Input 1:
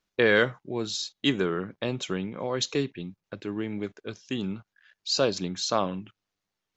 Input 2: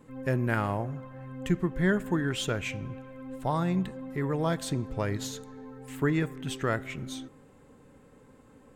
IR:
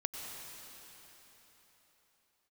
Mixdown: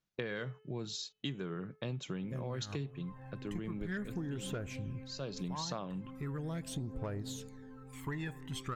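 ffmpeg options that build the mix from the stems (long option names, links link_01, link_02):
-filter_complex "[0:a]equalizer=frequency=140:width=2:gain=14,bandreject=frequency=431.8:width_type=h:width=4,bandreject=frequency=863.6:width_type=h:width=4,bandreject=frequency=1295.4:width_type=h:width=4,bandreject=frequency=1727.2:width_type=h:width=4,bandreject=frequency=2159:width_type=h:width=4,bandreject=frequency=2590.8:width_type=h:width=4,bandreject=frequency=3022.6:width_type=h:width=4,volume=2.5dB,afade=type=out:start_time=4.02:duration=0.2:silence=0.316228,afade=type=in:start_time=5.2:duration=0.38:silence=0.266073,asplit=2[link_01][link_02];[1:a]aphaser=in_gain=1:out_gain=1:delay=1.2:decay=0.62:speed=0.4:type=triangular,dynaudnorm=framelen=300:gausssize=5:maxgain=7dB,asoftclip=type=tanh:threshold=-10.5dB,adelay=2050,volume=-14dB[link_03];[link_02]apad=whole_len=476667[link_04];[link_03][link_04]sidechaincompress=threshold=-39dB:ratio=8:attack=16:release=241[link_05];[link_01][link_05]amix=inputs=2:normalize=0,acompressor=threshold=-35dB:ratio=10"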